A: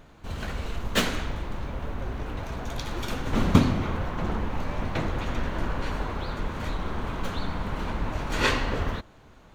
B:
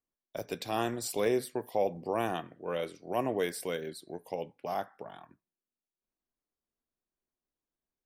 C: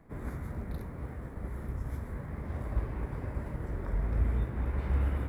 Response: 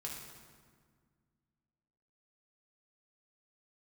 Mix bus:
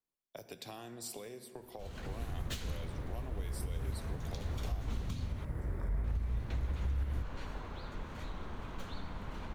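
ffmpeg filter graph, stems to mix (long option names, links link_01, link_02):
-filter_complex "[0:a]adelay=1550,volume=-11.5dB,asplit=3[link_01][link_02][link_03];[link_01]atrim=end=5.45,asetpts=PTS-STARTPTS,afade=type=out:start_time=5.446:duration=0.004:curve=hsin[link_04];[link_02]atrim=start=5.45:end=6.04,asetpts=PTS-STARTPTS,volume=0[link_05];[link_03]atrim=start=6.04,asetpts=PTS-STARTPTS,afade=type=in:duration=0.004:curve=hsin[link_06];[link_04][link_05][link_06]concat=n=3:v=0:a=1[link_07];[1:a]acompressor=threshold=-36dB:ratio=4,volume=-5.5dB,asplit=2[link_08][link_09];[link_09]volume=-7dB[link_10];[2:a]adelay=1950,volume=-0.5dB[link_11];[3:a]atrim=start_sample=2205[link_12];[link_10][link_12]afir=irnorm=-1:irlink=0[link_13];[link_07][link_08][link_11][link_13]amix=inputs=4:normalize=0,acrossover=split=130|3000[link_14][link_15][link_16];[link_15]acompressor=threshold=-44dB:ratio=6[link_17];[link_14][link_17][link_16]amix=inputs=3:normalize=0,alimiter=level_in=3dB:limit=-24dB:level=0:latency=1:release=187,volume=-3dB"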